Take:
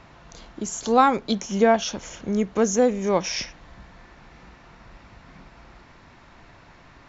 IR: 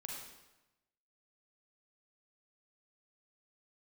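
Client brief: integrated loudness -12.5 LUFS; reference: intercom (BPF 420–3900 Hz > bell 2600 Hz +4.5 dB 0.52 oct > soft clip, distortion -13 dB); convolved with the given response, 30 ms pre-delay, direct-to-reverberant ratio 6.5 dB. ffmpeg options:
-filter_complex "[0:a]asplit=2[a][b];[1:a]atrim=start_sample=2205,adelay=30[c];[b][c]afir=irnorm=-1:irlink=0,volume=-4.5dB[d];[a][d]amix=inputs=2:normalize=0,highpass=420,lowpass=3.9k,equalizer=f=2.6k:t=o:w=0.52:g=4.5,asoftclip=threshold=-14dB,volume=13.5dB"

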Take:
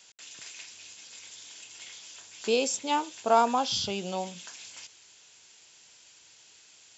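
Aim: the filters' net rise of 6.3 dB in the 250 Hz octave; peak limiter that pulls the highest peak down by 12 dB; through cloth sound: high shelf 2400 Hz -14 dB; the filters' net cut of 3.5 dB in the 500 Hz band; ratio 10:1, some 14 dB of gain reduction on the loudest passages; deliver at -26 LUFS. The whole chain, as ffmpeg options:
-af "equalizer=f=250:t=o:g=8.5,equalizer=f=500:t=o:g=-5.5,acompressor=threshold=-31dB:ratio=10,alimiter=level_in=8dB:limit=-24dB:level=0:latency=1,volume=-8dB,highshelf=f=2.4k:g=-14,volume=20.5dB"

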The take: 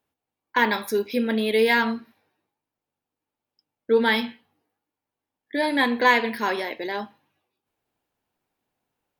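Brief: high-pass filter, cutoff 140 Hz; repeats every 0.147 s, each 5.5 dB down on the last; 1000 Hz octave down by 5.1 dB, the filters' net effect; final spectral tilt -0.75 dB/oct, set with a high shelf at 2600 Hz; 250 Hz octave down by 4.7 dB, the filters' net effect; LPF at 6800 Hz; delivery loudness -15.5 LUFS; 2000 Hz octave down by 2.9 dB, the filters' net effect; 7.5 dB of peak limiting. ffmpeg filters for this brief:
-af "highpass=140,lowpass=6.8k,equalizer=f=250:t=o:g=-4.5,equalizer=f=1k:t=o:g=-5.5,equalizer=f=2k:t=o:g=-4,highshelf=f=2.6k:g=6,alimiter=limit=-14.5dB:level=0:latency=1,aecho=1:1:147|294|441|588|735|882|1029:0.531|0.281|0.149|0.079|0.0419|0.0222|0.0118,volume=10.5dB"

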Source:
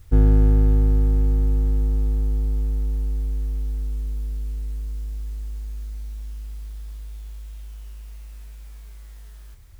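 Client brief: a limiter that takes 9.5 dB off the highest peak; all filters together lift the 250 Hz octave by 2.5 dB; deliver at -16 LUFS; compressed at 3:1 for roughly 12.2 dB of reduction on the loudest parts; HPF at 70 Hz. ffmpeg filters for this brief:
-af "highpass=70,equalizer=f=250:t=o:g=3,acompressor=threshold=-32dB:ratio=3,volume=23.5dB,alimiter=limit=-5.5dB:level=0:latency=1"

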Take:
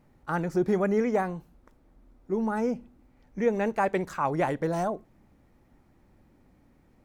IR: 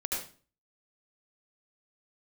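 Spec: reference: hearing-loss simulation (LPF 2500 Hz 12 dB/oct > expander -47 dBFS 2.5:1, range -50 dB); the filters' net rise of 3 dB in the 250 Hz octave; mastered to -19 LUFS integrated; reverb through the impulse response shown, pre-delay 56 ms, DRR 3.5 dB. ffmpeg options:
-filter_complex "[0:a]equalizer=f=250:t=o:g=4,asplit=2[a][b];[1:a]atrim=start_sample=2205,adelay=56[c];[b][c]afir=irnorm=-1:irlink=0,volume=-8.5dB[d];[a][d]amix=inputs=2:normalize=0,lowpass=2.5k,agate=range=-50dB:threshold=-47dB:ratio=2.5,volume=6.5dB"

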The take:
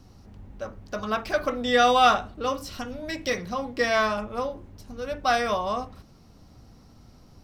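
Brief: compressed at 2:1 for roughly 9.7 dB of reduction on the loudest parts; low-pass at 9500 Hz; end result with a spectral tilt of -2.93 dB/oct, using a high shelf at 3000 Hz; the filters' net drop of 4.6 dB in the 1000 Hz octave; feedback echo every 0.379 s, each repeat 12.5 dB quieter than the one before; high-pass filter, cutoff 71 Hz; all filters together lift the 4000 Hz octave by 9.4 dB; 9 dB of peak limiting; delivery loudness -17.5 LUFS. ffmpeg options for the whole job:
-af "highpass=71,lowpass=9.5k,equalizer=f=1k:t=o:g=-8.5,highshelf=f=3k:g=7.5,equalizer=f=4k:t=o:g=6.5,acompressor=threshold=-32dB:ratio=2,alimiter=limit=-23dB:level=0:latency=1,aecho=1:1:379|758|1137:0.237|0.0569|0.0137,volume=16.5dB"

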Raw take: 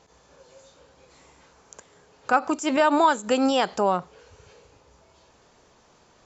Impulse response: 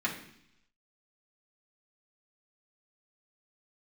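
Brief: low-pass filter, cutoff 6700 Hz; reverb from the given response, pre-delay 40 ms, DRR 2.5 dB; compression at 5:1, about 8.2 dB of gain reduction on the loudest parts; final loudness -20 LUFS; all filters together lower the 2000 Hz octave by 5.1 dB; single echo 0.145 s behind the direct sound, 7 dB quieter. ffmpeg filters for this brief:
-filter_complex "[0:a]lowpass=6.7k,equalizer=f=2k:t=o:g=-8,acompressor=threshold=-25dB:ratio=5,aecho=1:1:145:0.447,asplit=2[a][b];[1:a]atrim=start_sample=2205,adelay=40[c];[b][c]afir=irnorm=-1:irlink=0,volume=-10dB[d];[a][d]amix=inputs=2:normalize=0,volume=7.5dB"

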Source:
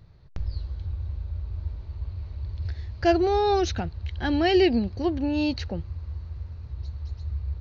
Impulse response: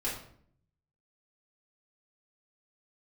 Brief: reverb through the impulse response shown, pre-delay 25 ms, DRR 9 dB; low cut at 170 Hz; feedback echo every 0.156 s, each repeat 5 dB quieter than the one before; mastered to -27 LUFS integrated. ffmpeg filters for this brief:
-filter_complex "[0:a]highpass=170,aecho=1:1:156|312|468|624|780|936|1092:0.562|0.315|0.176|0.0988|0.0553|0.031|0.0173,asplit=2[a][b];[1:a]atrim=start_sample=2205,adelay=25[c];[b][c]afir=irnorm=-1:irlink=0,volume=-14dB[d];[a][d]amix=inputs=2:normalize=0,volume=-4dB"

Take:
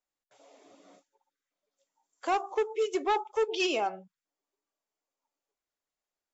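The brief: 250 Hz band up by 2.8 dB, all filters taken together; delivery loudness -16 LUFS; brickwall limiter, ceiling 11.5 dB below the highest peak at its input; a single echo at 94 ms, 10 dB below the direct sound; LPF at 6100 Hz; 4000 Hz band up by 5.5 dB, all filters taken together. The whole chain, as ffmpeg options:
-af "lowpass=6.1k,equalizer=f=250:t=o:g=5,equalizer=f=4k:t=o:g=8.5,alimiter=level_in=3dB:limit=-24dB:level=0:latency=1,volume=-3dB,aecho=1:1:94:0.316,volume=19.5dB"

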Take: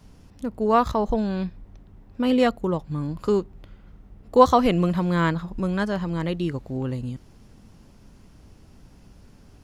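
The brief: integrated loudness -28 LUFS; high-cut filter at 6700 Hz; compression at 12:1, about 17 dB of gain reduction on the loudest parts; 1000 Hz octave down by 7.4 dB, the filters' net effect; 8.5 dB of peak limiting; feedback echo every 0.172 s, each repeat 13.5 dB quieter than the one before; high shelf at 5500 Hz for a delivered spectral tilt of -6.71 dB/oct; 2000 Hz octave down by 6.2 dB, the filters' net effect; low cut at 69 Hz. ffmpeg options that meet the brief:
-af "highpass=69,lowpass=6.7k,equalizer=f=1k:t=o:g=-8.5,equalizer=f=2k:t=o:g=-4,highshelf=f=5.5k:g=-6.5,acompressor=threshold=-29dB:ratio=12,alimiter=level_in=4dB:limit=-24dB:level=0:latency=1,volume=-4dB,aecho=1:1:172|344:0.211|0.0444,volume=9dB"

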